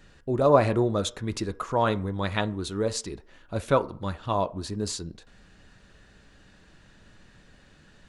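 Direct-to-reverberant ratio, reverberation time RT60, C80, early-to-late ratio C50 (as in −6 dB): 11.0 dB, 0.50 s, 25.0 dB, 20.0 dB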